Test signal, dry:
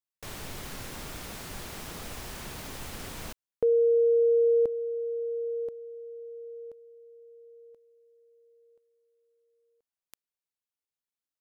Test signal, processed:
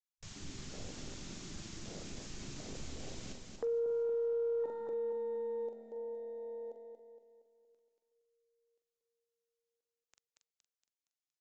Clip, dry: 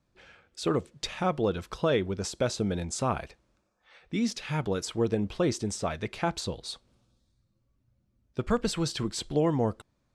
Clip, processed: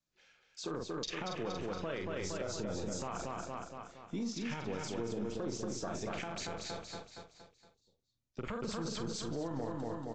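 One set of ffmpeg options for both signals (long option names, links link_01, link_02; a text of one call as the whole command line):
ffmpeg -i in.wav -filter_complex "[0:a]afwtdn=0.0158,adynamicequalizer=threshold=0.0126:dfrequency=430:dqfactor=3.8:tfrequency=430:tqfactor=3.8:attack=5:release=100:ratio=0.375:range=2:mode=cutabove:tftype=bell,asplit=2[link_01][link_02];[link_02]adelay=43,volume=-7.5dB[link_03];[link_01][link_03]amix=inputs=2:normalize=0,acrossover=split=160|3100[link_04][link_05][link_06];[link_04]aeval=exprs='max(val(0),0)':channel_layout=same[link_07];[link_07][link_05][link_06]amix=inputs=3:normalize=0,crystalizer=i=5.5:c=0,asplit=2[link_08][link_09];[link_09]aecho=0:1:233|466|699|932|1165|1398:0.501|0.231|0.106|0.0488|0.0224|0.0103[link_10];[link_08][link_10]amix=inputs=2:normalize=0,acompressor=threshold=-30dB:ratio=10:attack=0.31:release=65:knee=6:detection=rms,volume=-1.5dB" -ar 16000 -c:a aac -b:a 32k out.aac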